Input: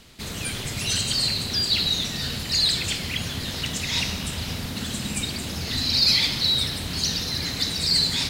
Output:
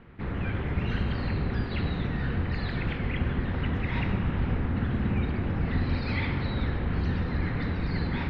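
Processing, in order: octaver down 1 oct, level +2 dB; LPF 1900 Hz 24 dB/oct; notch 630 Hz, Q 12; on a send: reverb RT60 1.3 s, pre-delay 53 ms, DRR 12 dB; on the sum: gain +1 dB

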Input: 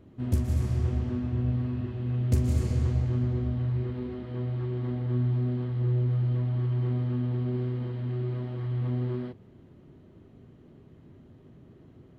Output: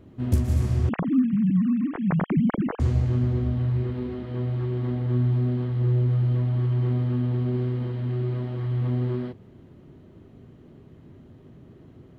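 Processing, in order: 0.89–2.8 sine-wave speech; short-mantissa float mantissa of 8-bit; gain +4 dB

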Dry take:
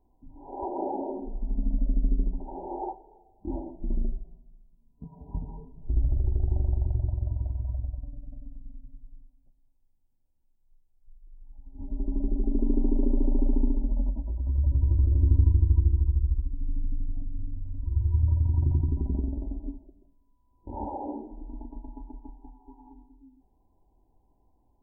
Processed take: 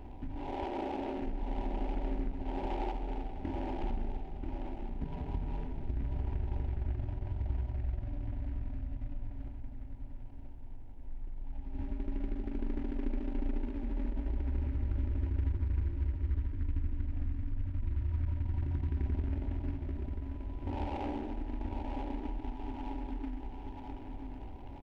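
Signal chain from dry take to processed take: per-bin compression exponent 0.6; compressor 3:1, threshold -36 dBFS, peak gain reduction 16 dB; feedback echo 0.985 s, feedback 38%, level -5 dB; noise-modulated delay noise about 1600 Hz, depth 0.046 ms

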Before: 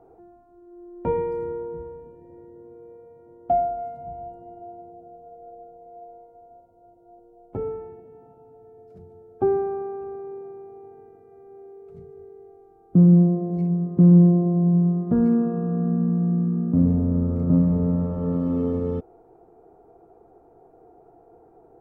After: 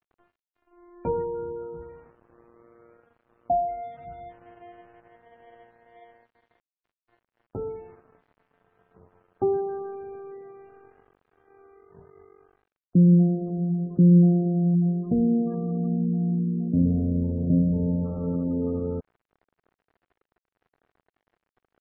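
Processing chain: crossover distortion -46.5 dBFS; spectral gate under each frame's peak -30 dB strong; gain -2.5 dB

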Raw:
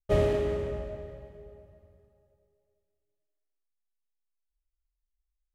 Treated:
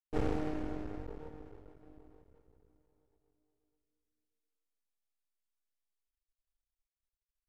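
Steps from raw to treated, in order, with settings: speed mistake 45 rpm record played at 33 rpm; half-wave rectifier; gain -5 dB

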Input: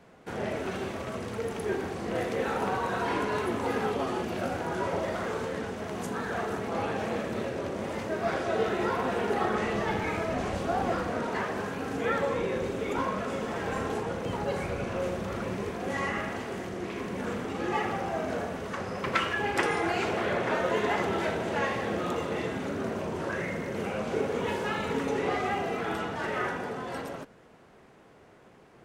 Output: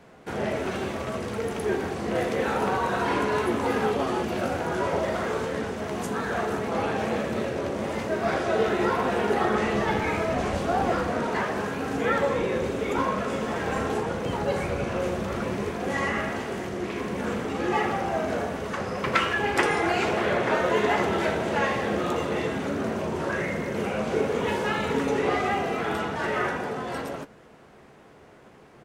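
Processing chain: doubler 14 ms -12 dB; gain +4 dB

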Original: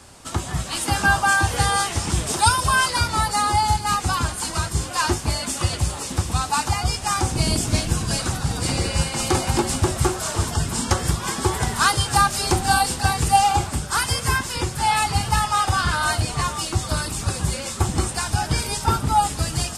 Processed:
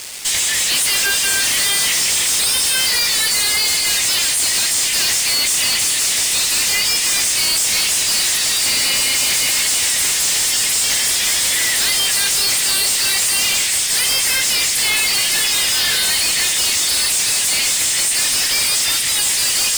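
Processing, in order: elliptic high-pass 1900 Hz, stop band 40 dB; fuzz box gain 43 dB, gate -51 dBFS; gain -2 dB

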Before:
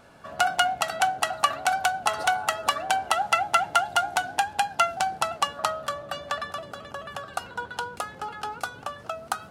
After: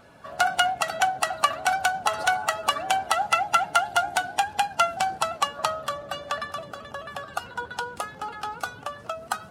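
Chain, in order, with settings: bin magnitudes rounded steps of 15 dB; gain +1 dB

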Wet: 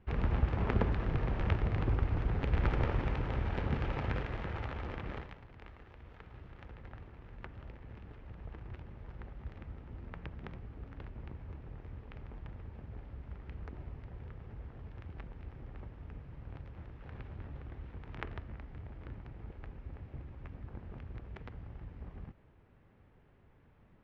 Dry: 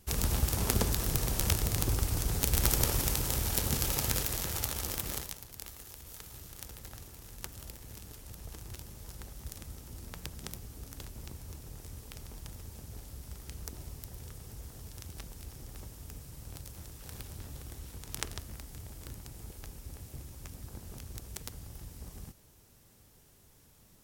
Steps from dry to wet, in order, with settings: LPF 2300 Hz 24 dB/oct

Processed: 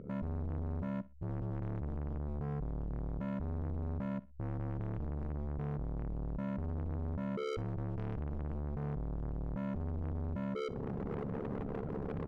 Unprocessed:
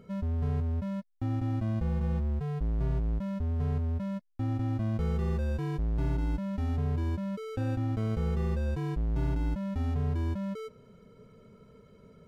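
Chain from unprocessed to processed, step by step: formant sharpening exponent 2; recorder AGC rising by 48 dB/s; LPF 1700 Hz 12 dB/oct; in parallel at 0 dB: limiter -27 dBFS, peak gain reduction 8 dB; on the sum: overloaded stage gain 33 dB; AM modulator 71 Hz, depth 95%; soft clip -37.5 dBFS, distortion -16 dB; on a send: feedback echo 61 ms, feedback 26%, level -20 dB; on the sum: gain +4 dB

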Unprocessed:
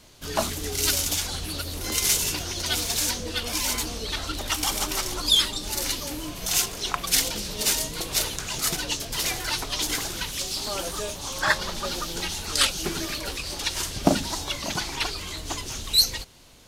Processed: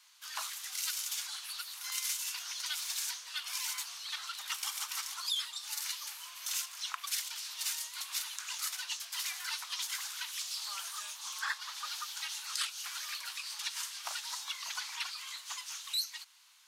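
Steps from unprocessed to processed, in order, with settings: steep high-pass 990 Hz 36 dB/oct; compressor 2.5:1, threshold -27 dBFS, peak gain reduction 9.5 dB; gain -7.5 dB

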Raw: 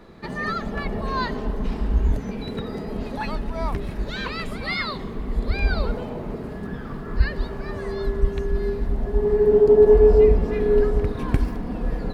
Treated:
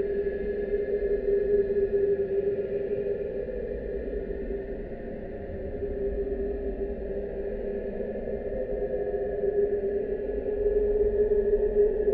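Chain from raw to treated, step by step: vowel filter e; tilt -3 dB/oct; on a send: multi-head echo 0.124 s, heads second and third, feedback 71%, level -12 dB; on the sum: Paulstretch 20×, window 0.10 s, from 8.61; gain +8 dB

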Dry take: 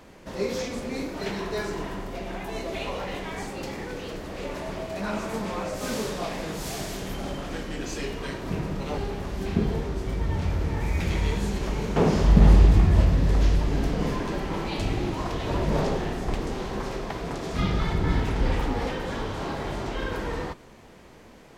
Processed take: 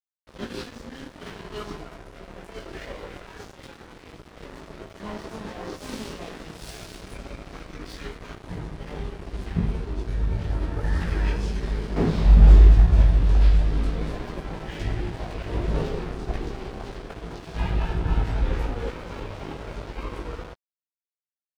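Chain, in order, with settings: chorus voices 6, 0.76 Hz, delay 18 ms, depth 1.6 ms; crossover distortion -37.5 dBFS; formant shift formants -5 st; gain +1.5 dB

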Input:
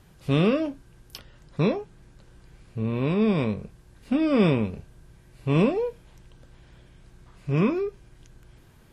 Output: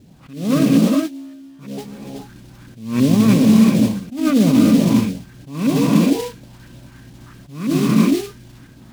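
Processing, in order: 0.64–1.78 resonator 68 Hz, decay 1.9 s, harmonics all, mix 100%; LFO low-pass saw up 3 Hz 420–1700 Hz; reverb, pre-delay 3 ms, DRR 0 dB; modulation noise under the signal 20 dB; weighting filter D; limiter -14.5 dBFS, peak gain reduction 8.5 dB; resonant low shelf 320 Hz +6.5 dB, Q 3; attack slew limiter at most 110 dB/s; gain +4.5 dB

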